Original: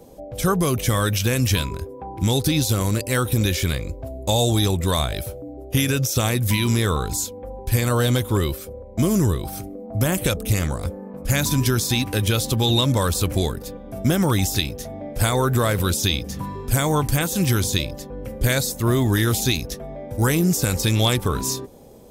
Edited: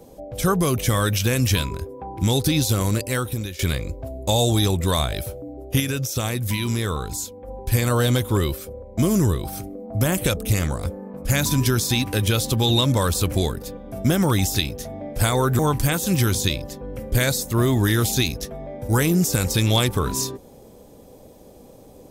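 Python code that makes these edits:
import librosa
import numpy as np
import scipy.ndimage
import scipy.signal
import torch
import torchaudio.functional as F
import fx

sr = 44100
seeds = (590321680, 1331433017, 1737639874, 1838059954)

y = fx.edit(x, sr, fx.fade_out_to(start_s=2.97, length_s=0.62, floor_db=-17.0),
    fx.clip_gain(start_s=5.8, length_s=1.68, db=-4.0),
    fx.cut(start_s=15.59, length_s=1.29), tone=tone)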